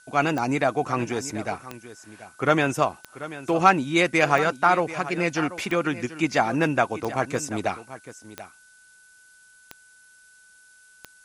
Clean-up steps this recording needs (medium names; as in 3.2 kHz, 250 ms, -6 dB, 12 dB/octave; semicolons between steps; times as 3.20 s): de-click; band-stop 1.5 kHz, Q 30; noise reduction 15 dB, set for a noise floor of -54 dBFS; inverse comb 736 ms -15 dB